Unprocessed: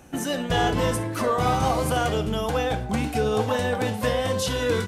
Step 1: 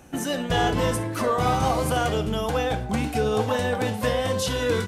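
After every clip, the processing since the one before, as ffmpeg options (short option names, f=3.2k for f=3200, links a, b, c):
-af anull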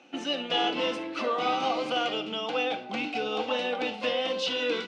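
-af "highpass=f=290:w=0.5412,highpass=f=290:w=1.3066,equalizer=f=410:t=q:w=4:g=-10,equalizer=f=640:t=q:w=4:g=-5,equalizer=f=1k:t=q:w=4:g=-8,equalizer=f=1.7k:t=q:w=4:g=-10,equalizer=f=2.7k:t=q:w=4:g=7,lowpass=f=4.6k:w=0.5412,lowpass=f=4.6k:w=1.3066"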